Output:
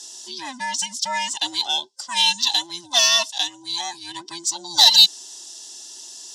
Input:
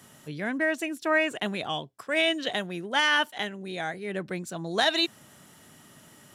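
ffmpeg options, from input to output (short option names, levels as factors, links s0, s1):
-af "afftfilt=real='real(if(between(b,1,1008),(2*floor((b-1)/24)+1)*24-b,b),0)':imag='imag(if(between(b,1,1008),(2*floor((b-1)/24)+1)*24-b,b),0)*if(between(b,1,1008),-1,1)':win_size=2048:overlap=0.75,highpass=420,equalizer=f=810:t=q:w=4:g=4,equalizer=f=1300:t=q:w=4:g=-9,equalizer=f=2400:t=q:w=4:g=-7,equalizer=f=5400:t=q:w=4:g=6,lowpass=f=7200:w=0.5412,lowpass=f=7200:w=1.3066,aexciter=amount=5.1:drive=9.5:freq=3200"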